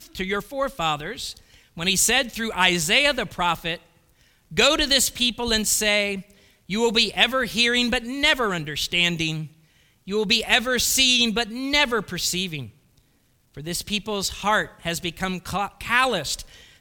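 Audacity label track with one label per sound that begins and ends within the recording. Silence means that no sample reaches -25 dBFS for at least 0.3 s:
1.780000	3.750000	sound
4.570000	6.180000	sound
6.700000	9.420000	sound
10.090000	12.590000	sound
13.670000	16.410000	sound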